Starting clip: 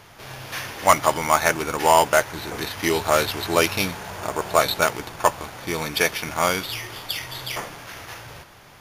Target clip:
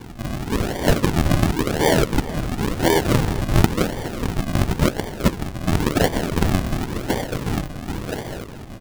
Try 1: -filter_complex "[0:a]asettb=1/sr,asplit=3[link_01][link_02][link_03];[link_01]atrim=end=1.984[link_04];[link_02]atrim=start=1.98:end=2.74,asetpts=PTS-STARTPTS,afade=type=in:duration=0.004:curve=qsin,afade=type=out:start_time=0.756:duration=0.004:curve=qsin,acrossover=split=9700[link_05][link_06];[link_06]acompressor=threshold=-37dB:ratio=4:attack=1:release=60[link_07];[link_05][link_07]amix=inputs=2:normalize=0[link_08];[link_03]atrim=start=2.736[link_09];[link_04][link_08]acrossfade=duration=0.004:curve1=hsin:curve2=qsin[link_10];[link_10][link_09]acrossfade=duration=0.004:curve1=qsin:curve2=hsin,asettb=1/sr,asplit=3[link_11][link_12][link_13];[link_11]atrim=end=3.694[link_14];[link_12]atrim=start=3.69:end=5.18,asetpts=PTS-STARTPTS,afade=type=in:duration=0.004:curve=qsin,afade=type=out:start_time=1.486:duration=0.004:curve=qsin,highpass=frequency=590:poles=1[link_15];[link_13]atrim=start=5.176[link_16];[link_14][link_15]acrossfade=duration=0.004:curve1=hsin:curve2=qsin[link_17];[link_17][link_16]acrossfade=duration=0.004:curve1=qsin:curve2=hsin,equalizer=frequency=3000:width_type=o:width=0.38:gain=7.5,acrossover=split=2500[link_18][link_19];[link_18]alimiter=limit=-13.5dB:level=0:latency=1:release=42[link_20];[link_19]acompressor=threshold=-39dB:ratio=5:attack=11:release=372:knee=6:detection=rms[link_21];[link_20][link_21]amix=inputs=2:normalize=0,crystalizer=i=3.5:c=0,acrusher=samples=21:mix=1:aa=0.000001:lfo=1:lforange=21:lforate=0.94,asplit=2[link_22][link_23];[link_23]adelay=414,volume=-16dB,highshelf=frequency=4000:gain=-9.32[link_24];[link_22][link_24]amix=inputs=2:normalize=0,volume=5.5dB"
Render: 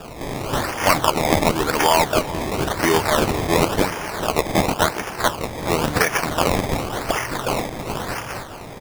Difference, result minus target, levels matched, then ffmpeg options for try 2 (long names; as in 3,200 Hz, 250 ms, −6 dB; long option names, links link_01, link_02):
sample-and-hold swept by an LFO: distortion −17 dB
-filter_complex "[0:a]asettb=1/sr,asplit=3[link_01][link_02][link_03];[link_01]atrim=end=1.984[link_04];[link_02]atrim=start=1.98:end=2.74,asetpts=PTS-STARTPTS,afade=type=in:duration=0.004:curve=qsin,afade=type=out:start_time=0.756:duration=0.004:curve=qsin,acrossover=split=9700[link_05][link_06];[link_06]acompressor=threshold=-37dB:ratio=4:attack=1:release=60[link_07];[link_05][link_07]amix=inputs=2:normalize=0[link_08];[link_03]atrim=start=2.736[link_09];[link_04][link_08]acrossfade=duration=0.004:curve1=hsin:curve2=qsin[link_10];[link_10][link_09]acrossfade=duration=0.004:curve1=qsin:curve2=hsin,asettb=1/sr,asplit=3[link_11][link_12][link_13];[link_11]atrim=end=3.694[link_14];[link_12]atrim=start=3.69:end=5.18,asetpts=PTS-STARTPTS,afade=type=in:duration=0.004:curve=qsin,afade=type=out:start_time=1.486:duration=0.004:curve=qsin,highpass=frequency=590:poles=1[link_15];[link_13]atrim=start=5.176[link_16];[link_14][link_15]acrossfade=duration=0.004:curve1=hsin:curve2=qsin[link_17];[link_17][link_16]acrossfade=duration=0.004:curve1=qsin:curve2=hsin,equalizer=frequency=3000:width_type=o:width=0.38:gain=7.5,acrossover=split=2500[link_18][link_19];[link_18]alimiter=limit=-13.5dB:level=0:latency=1:release=42[link_20];[link_19]acompressor=threshold=-39dB:ratio=5:attack=11:release=372:knee=6:detection=rms[link_21];[link_20][link_21]amix=inputs=2:normalize=0,crystalizer=i=3.5:c=0,acrusher=samples=66:mix=1:aa=0.000001:lfo=1:lforange=66:lforate=0.94,asplit=2[link_22][link_23];[link_23]adelay=414,volume=-16dB,highshelf=frequency=4000:gain=-9.32[link_24];[link_22][link_24]amix=inputs=2:normalize=0,volume=5.5dB"